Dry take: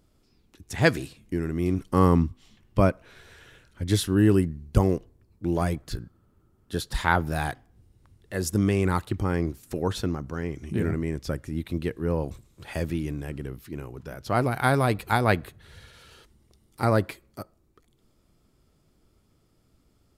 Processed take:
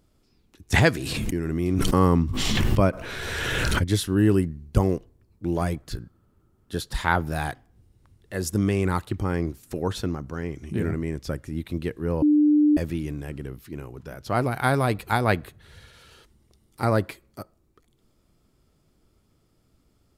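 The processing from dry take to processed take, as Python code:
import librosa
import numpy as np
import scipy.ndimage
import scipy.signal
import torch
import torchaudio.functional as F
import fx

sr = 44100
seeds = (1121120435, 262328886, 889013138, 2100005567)

y = fx.pre_swell(x, sr, db_per_s=20.0, at=(0.72, 3.83), fade=0.02)
y = fx.edit(y, sr, fx.bleep(start_s=12.22, length_s=0.55, hz=298.0, db=-14.5), tone=tone)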